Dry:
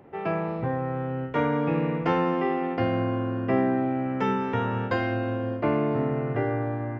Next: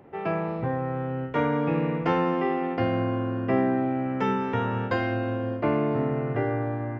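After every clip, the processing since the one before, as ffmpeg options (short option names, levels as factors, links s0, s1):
-af anull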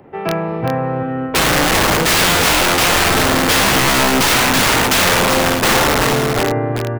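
-filter_complex "[0:a]acrossover=split=250|1800[s0][s1][s2];[s1]dynaudnorm=f=280:g=11:m=3.35[s3];[s0][s3][s2]amix=inputs=3:normalize=0,aeval=exprs='(mod(7.08*val(0)+1,2)-1)/7.08':c=same,aecho=1:1:387:0.473,volume=2.51"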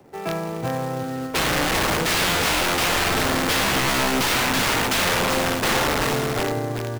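-filter_complex "[0:a]acrossover=split=100|1500|6300[s0][s1][s2][s3];[s1]acrusher=bits=3:mode=log:mix=0:aa=0.000001[s4];[s3]asoftclip=type=hard:threshold=0.168[s5];[s0][s4][s2][s5]amix=inputs=4:normalize=0,volume=0.422"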